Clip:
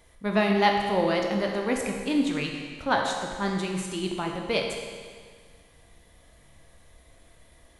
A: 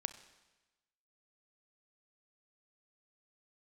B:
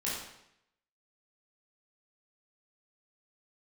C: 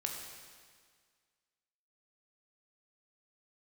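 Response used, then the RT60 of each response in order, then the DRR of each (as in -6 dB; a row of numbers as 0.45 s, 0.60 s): C; 1.1 s, 0.75 s, 1.8 s; 11.5 dB, -8.0 dB, 1.0 dB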